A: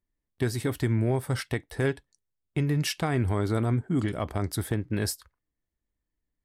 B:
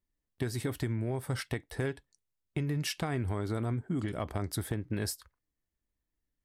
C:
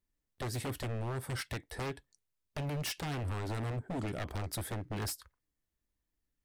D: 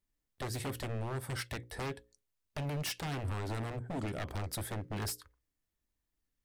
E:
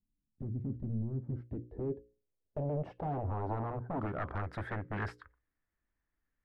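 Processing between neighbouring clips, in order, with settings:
compression, threshold -27 dBFS, peak gain reduction 6.5 dB; trim -2 dB
wavefolder -31 dBFS
hum notches 60/120/180/240/300/360/420/480/540 Hz
low-pass sweep 220 Hz -> 1.7 kHz, 0.95–4.65 s

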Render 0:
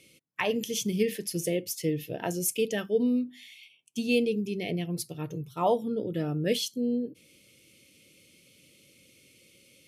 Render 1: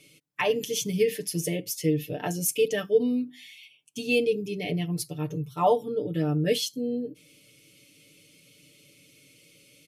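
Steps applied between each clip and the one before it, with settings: comb 6.8 ms, depth 80%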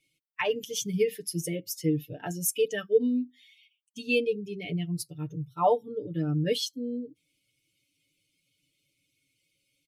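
expander on every frequency bin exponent 1.5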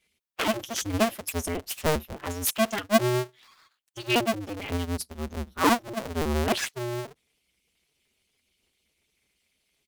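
cycle switcher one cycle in 2, inverted; trim +1.5 dB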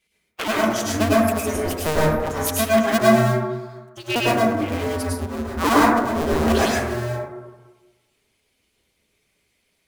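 plate-style reverb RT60 1.2 s, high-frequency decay 0.25×, pre-delay 90 ms, DRR -6.5 dB

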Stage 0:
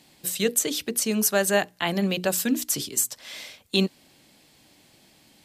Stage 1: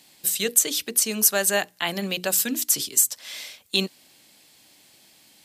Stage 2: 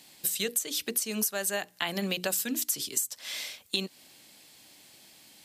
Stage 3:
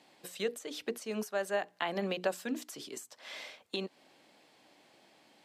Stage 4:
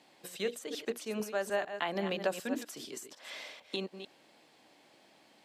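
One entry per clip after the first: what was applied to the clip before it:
tilt EQ +2 dB/octave; trim -1 dB
compression 12:1, threshold -26 dBFS, peak gain reduction 14 dB
band-pass filter 640 Hz, Q 0.69; trim +2 dB
chunks repeated in reverse 150 ms, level -9 dB

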